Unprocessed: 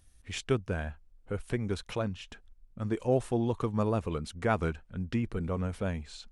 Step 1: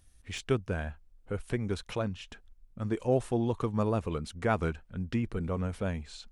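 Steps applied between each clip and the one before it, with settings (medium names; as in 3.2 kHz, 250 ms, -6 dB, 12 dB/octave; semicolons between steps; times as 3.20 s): de-esser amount 90%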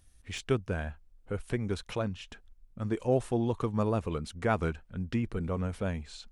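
no audible change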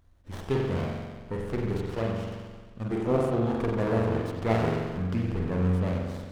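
spring tank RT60 1.5 s, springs 44 ms, chirp 60 ms, DRR -2.5 dB; sliding maximum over 17 samples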